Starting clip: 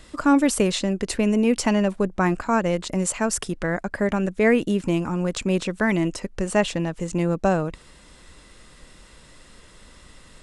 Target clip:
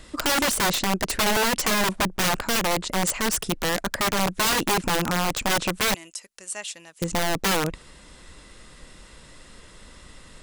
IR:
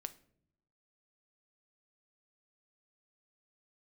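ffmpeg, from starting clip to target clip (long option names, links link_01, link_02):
-filter_complex "[0:a]asettb=1/sr,asplit=3[link_01][link_02][link_03];[link_01]atrim=end=5.944[link_04];[link_02]atrim=start=5.94:end=7.02,asetpts=PTS-STARTPTS,afade=type=in:duration=0.004:curve=qsin,afade=type=out:start_time=1.076:duration=0.004:curve=qsin,aderivative[link_05];[link_03]atrim=start=7.016[link_06];[link_04][link_05]acrossfade=duration=0.004:curve1=hsin:curve2=qsin[link_07];[link_07][link_06]acrossfade=duration=0.004:curve1=qsin:curve2=hsin,aeval=exprs='(mod(7.94*val(0)+1,2)-1)/7.94':channel_layout=same,volume=1.5dB"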